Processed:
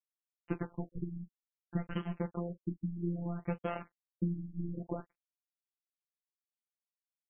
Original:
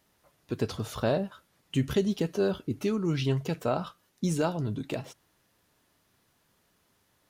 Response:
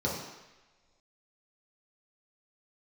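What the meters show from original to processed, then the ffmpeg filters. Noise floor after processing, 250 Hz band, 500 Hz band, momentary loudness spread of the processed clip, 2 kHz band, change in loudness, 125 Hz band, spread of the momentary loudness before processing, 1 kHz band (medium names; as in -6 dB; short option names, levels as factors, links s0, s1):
under -85 dBFS, -7.5 dB, -13.5 dB, 6 LU, -10.5 dB, -9.0 dB, -7.0 dB, 9 LU, -9.5 dB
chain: -filter_complex "[0:a]lowpass=5300,lowshelf=f=62:g=12,acompressor=threshold=0.0126:ratio=12,aeval=exprs='0.0473*(cos(1*acos(clip(val(0)/0.0473,-1,1)))-cos(1*PI/2))+0.00335*(cos(7*acos(clip(val(0)/0.0473,-1,1)))-cos(7*PI/2))+0.000299*(cos(8*acos(clip(val(0)/0.0473,-1,1)))-cos(8*PI/2))':c=same,aeval=exprs='val(0)*gte(abs(val(0)),0.00562)':c=same,afftfilt=real='hypot(re,im)*cos(PI*b)':imag='0':win_size=1024:overlap=0.75,asplit=2[s0][s1];[s1]aecho=0:1:16|40:0.335|0.133[s2];[s0][s2]amix=inputs=2:normalize=0,afftfilt=real='re*lt(b*sr/1024,310*pow(3300/310,0.5+0.5*sin(2*PI*0.61*pts/sr)))':imag='im*lt(b*sr/1024,310*pow(3300/310,0.5+0.5*sin(2*PI*0.61*pts/sr)))':win_size=1024:overlap=0.75,volume=3.16"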